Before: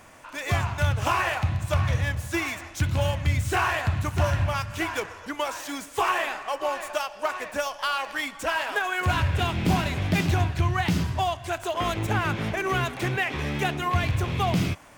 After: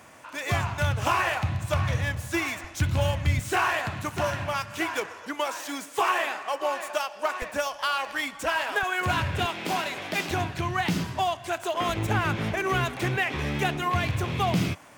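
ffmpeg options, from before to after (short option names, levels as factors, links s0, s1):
-af "asetnsamples=n=441:p=0,asendcmd='2.64 highpass f 43;3.39 highpass f 180;7.42 highpass f 46;8.83 highpass f 120;9.46 highpass f 410;10.31 highpass f 160;11.89 highpass f 44;13.76 highpass f 100',highpass=89"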